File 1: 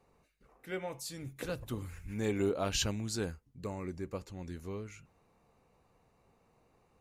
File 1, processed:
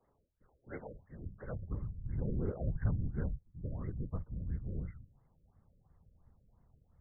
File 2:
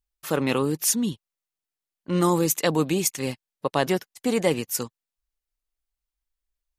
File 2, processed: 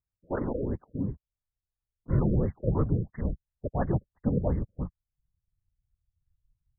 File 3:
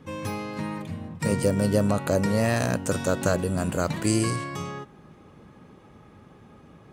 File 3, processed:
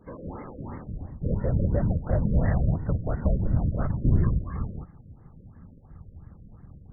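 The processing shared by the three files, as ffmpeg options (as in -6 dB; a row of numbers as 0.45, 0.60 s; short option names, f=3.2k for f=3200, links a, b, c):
-af "afftfilt=real='hypot(re,im)*cos(2*PI*random(0))':imag='hypot(re,im)*sin(2*PI*random(1))':win_size=512:overlap=0.75,asubboost=boost=8.5:cutoff=130,afftfilt=real='re*lt(b*sr/1024,590*pow(2200/590,0.5+0.5*sin(2*PI*2.9*pts/sr)))':imag='im*lt(b*sr/1024,590*pow(2200/590,0.5+0.5*sin(2*PI*2.9*pts/sr)))':win_size=1024:overlap=0.75"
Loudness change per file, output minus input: -3.0, -6.0, -1.0 LU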